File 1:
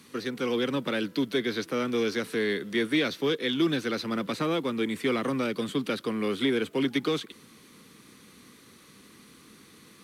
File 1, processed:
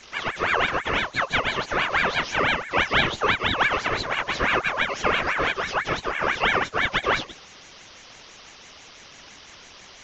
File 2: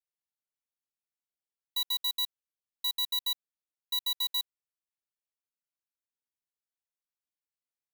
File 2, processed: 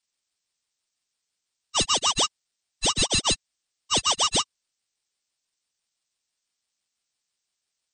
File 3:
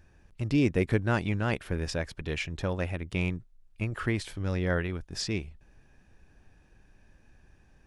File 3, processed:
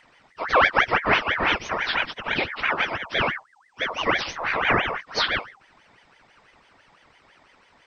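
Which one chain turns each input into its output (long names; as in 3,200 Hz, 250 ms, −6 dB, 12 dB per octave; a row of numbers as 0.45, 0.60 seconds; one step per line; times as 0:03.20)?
partials spread apart or drawn together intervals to 76%
bass and treble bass −10 dB, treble +10 dB
ring modulator whose carrier an LFO sweeps 1,400 Hz, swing 45%, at 6 Hz
loudness normalisation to −23 LKFS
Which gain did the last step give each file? +10.5, +9.0, +14.0 decibels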